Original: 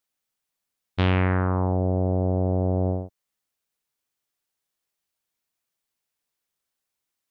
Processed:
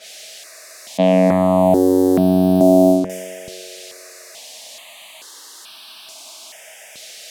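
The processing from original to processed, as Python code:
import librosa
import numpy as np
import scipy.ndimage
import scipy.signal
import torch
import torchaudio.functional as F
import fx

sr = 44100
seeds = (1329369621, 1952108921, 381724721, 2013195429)

y = x + 0.5 * 10.0 ** (-18.5 / 20.0) * np.diff(np.sign(x), prepend=np.sign(x[:1]))
y = fx.rider(y, sr, range_db=10, speed_s=0.5)
y = scipy.signal.sosfilt(scipy.signal.butter(4, 190.0, 'highpass', fs=sr, output='sos'), y)
y = fx.peak_eq(y, sr, hz=640.0, db=15.0, octaves=0.25)
y = fx.env_lowpass(y, sr, base_hz=1400.0, full_db=-12.5)
y = fx.low_shelf(y, sr, hz=470.0, db=10.0)
y = fx.notch(y, sr, hz=1400.0, q=9.9)
y = fx.echo_banded(y, sr, ms=141, feedback_pct=73, hz=500.0, wet_db=-10.0)
y = fx.phaser_held(y, sr, hz=2.3, low_hz=280.0, high_hz=2000.0)
y = y * librosa.db_to_amplitude(4.0)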